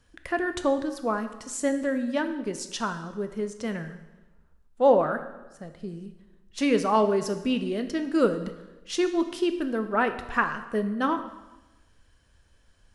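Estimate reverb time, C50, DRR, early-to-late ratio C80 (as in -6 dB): 1.1 s, 10.5 dB, 8.5 dB, 12.5 dB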